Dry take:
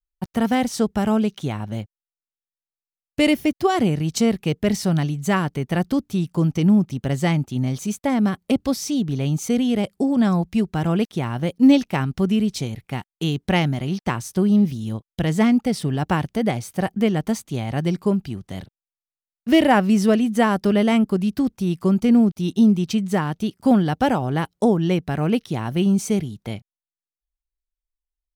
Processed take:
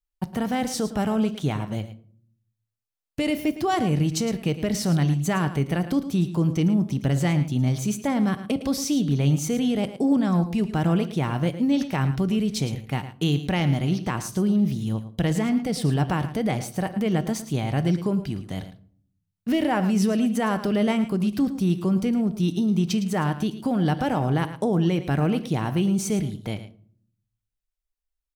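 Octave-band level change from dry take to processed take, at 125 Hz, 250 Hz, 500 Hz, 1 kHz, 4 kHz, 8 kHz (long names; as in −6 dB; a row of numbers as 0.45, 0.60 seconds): 0.0, −4.0, −4.5, −4.0, −3.0, −0.5 decibels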